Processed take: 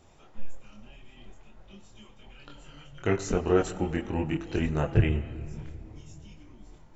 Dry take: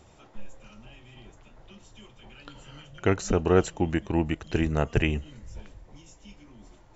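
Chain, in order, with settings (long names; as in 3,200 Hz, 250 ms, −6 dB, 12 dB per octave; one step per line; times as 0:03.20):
0:04.90–0:05.41: graphic EQ with 15 bands 100 Hz +10 dB, 2,500 Hz −4 dB, 6,300 Hz −12 dB
convolution reverb RT60 2.8 s, pre-delay 5 ms, DRR 12.5 dB
multi-voice chorus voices 6, 0.42 Hz, delay 24 ms, depth 4.3 ms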